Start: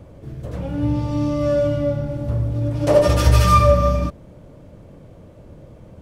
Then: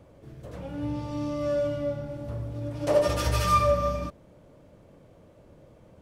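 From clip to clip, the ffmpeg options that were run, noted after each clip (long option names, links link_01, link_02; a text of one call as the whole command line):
ffmpeg -i in.wav -af "lowshelf=frequency=240:gain=-8,volume=-6.5dB" out.wav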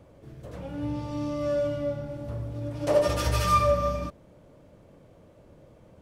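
ffmpeg -i in.wav -af anull out.wav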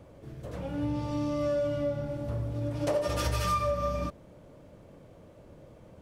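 ffmpeg -i in.wav -af "acompressor=threshold=-27dB:ratio=6,volume=1.5dB" out.wav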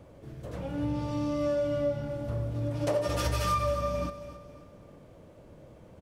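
ffmpeg -i in.wav -af "aecho=1:1:269|538|807|1076:0.224|0.0895|0.0358|0.0143" out.wav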